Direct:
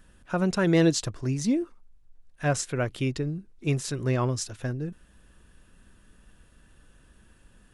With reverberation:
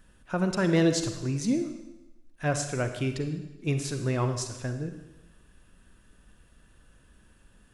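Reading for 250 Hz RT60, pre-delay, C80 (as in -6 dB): 1.0 s, 36 ms, 10.0 dB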